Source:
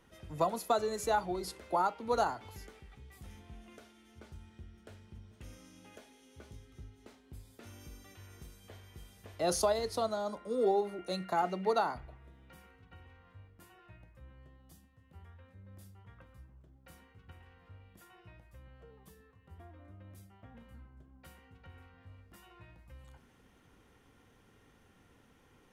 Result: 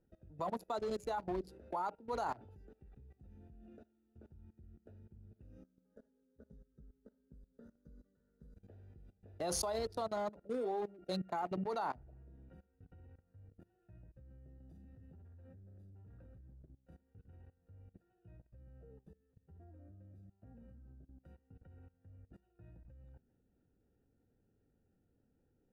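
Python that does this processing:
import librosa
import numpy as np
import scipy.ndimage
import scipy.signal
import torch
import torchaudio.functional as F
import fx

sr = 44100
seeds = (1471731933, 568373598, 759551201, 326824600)

y = fx.fixed_phaser(x, sr, hz=500.0, stages=8, at=(5.63, 8.57))
y = fx.leveller(y, sr, passes=3, at=(14.6, 16.41))
y = fx.wiener(y, sr, points=41)
y = fx.dynamic_eq(y, sr, hz=940.0, q=2.8, threshold_db=-47.0, ratio=4.0, max_db=5)
y = fx.level_steps(y, sr, step_db=20)
y = y * librosa.db_to_amplitude(3.5)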